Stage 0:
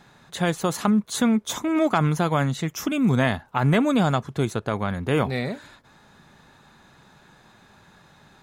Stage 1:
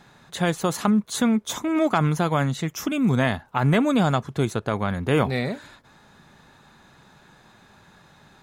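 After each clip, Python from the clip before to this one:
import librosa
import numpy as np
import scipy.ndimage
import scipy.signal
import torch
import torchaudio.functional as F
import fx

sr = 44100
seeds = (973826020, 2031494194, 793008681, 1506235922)

y = fx.rider(x, sr, range_db=10, speed_s=2.0)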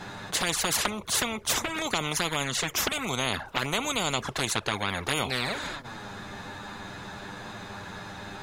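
y = fx.high_shelf(x, sr, hz=8200.0, db=-6.0)
y = fx.env_flanger(y, sr, rest_ms=10.9, full_db=-17.0)
y = fx.spectral_comp(y, sr, ratio=4.0)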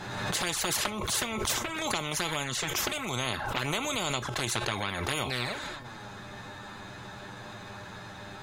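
y = fx.comb_fb(x, sr, f0_hz=120.0, decay_s=0.2, harmonics='odd', damping=0.0, mix_pct=60)
y = fx.pre_swell(y, sr, db_per_s=34.0)
y = y * librosa.db_to_amplitude(2.5)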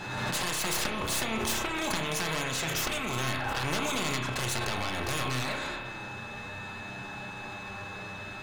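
y = np.minimum(x, 2.0 * 10.0 ** (-28.5 / 20.0) - x)
y = y + 10.0 ** (-44.0 / 20.0) * np.sin(2.0 * np.pi * 2600.0 * np.arange(len(y)) / sr)
y = fx.rev_spring(y, sr, rt60_s=1.3, pass_ms=(31,), chirp_ms=40, drr_db=2.5)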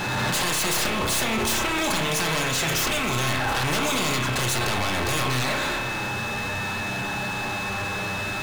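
y = fx.power_curve(x, sr, exponent=0.5)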